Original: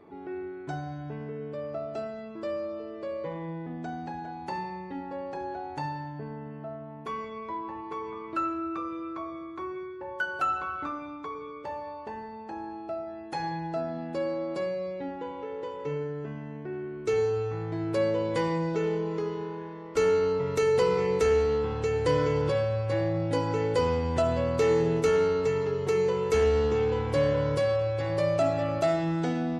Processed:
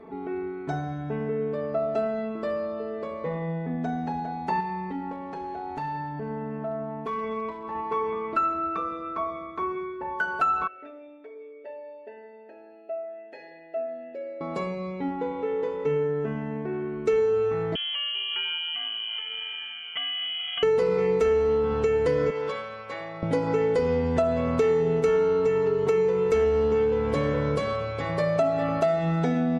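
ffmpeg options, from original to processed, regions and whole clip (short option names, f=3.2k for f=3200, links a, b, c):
-filter_complex "[0:a]asettb=1/sr,asplit=3[a][b][c];[a]atrim=end=4.604[d];[b]atrim=start=4.6:end=7.75,asetpts=PTS-STARTPTS,afade=t=in:d=0.004:c=qsin,afade=t=out:st=3.146:d=0.004:c=qsin,acompressor=threshold=-36dB:ratio=4:attack=3.2:release=140:knee=1:detection=peak,volume=33.5dB,asoftclip=hard,volume=-33.5dB[e];[c]atrim=start=7.746[f];[d][e]acrossfade=d=0.004:c1=hsin:c2=qsin[g];[g][f]acrossfade=d=0.004:c1=qsin:c2=hsin,asettb=1/sr,asplit=3[h][i][j];[h]atrim=end=10.674[k];[i]atrim=start=10.67:end=14.41,asetpts=PTS-STARTPTS,afade=t=in:d=0.004:c=qsin,afade=t=out:st=3.736:d=0.004:c=qsin,asplit=3[l][m][n];[l]bandpass=f=530:t=q:w=8,volume=0dB[o];[m]bandpass=f=1.84k:t=q:w=8,volume=-6dB[p];[n]bandpass=f=2.48k:t=q:w=8,volume=-9dB[q];[o][p][q]amix=inputs=3:normalize=0,aecho=1:1:3.1:0.73,atrim=end_sample=164934[r];[j]atrim=start=14.406[s];[k][r]acrossfade=d=0.004:c1=hsin:c2=qsin[t];[t][s]acrossfade=d=0.004:c1=qsin:c2=hsin,asettb=1/sr,asplit=3[u][v][w];[u]atrim=end=17.754[x];[v]atrim=start=17.75:end=20.63,asetpts=PTS-STARTPTS,afade=t=in:d=0.004:c=qsin,afade=t=out:st=2.876:d=0.004:c=qsin,acompressor=threshold=-30dB:ratio=10:attack=3.2:release=140:knee=1:detection=peak,lowpass=f=2.9k:t=q:w=0.5098,lowpass=f=2.9k:t=q:w=0.6013,lowpass=f=2.9k:t=q:w=0.9,lowpass=f=2.9k:t=q:w=2.563,afreqshift=-3400[y];[w]atrim=start=20.626[z];[x][y]acrossfade=d=0.004:c1=hsin:c2=qsin[aa];[aa][z]acrossfade=d=0.004:c1=qsin:c2=hsin,asettb=1/sr,asplit=3[ab][ac][ad];[ab]atrim=end=22.304[ae];[ac]atrim=start=22.3:end=23.23,asetpts=PTS-STARTPTS,afade=t=in:d=0.004:c=qsin,afade=t=out:st=0.926:d=0.004:c=qsin,highpass=f=1.2k:p=1,highshelf=f=6.7k:g=-10.5[af];[ad]atrim=start=23.226[ag];[ae][af]acrossfade=d=0.004:c1=hsin:c2=qsin[ah];[ah][ag]acrossfade=d=0.004:c1=qsin:c2=hsin,highshelf=f=3.1k:g=-9.5,aecho=1:1:4.5:0.67,acompressor=threshold=-27dB:ratio=4,volume=6dB"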